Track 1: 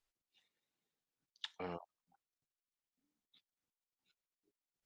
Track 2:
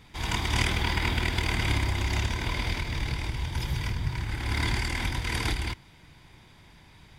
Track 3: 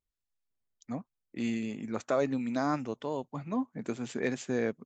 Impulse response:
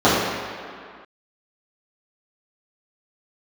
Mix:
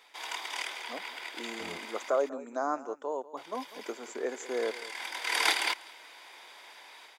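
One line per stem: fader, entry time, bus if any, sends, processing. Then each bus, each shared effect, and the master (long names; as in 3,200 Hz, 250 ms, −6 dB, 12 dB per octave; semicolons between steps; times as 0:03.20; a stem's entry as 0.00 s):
−1.5 dB, 0.00 s, no send, no echo send, no processing
−0.5 dB, 0.00 s, muted 0:02.10–0:03.37, no send, echo send −23 dB, high-pass filter 490 Hz 24 dB per octave; automatic gain control gain up to 7.5 dB; automatic ducking −18 dB, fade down 0.85 s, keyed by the third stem
+1.5 dB, 0.00 s, no send, echo send −17 dB, high-pass filter 380 Hz 24 dB per octave; flat-topped bell 3,100 Hz −14.5 dB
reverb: not used
echo: single-tap delay 194 ms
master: no processing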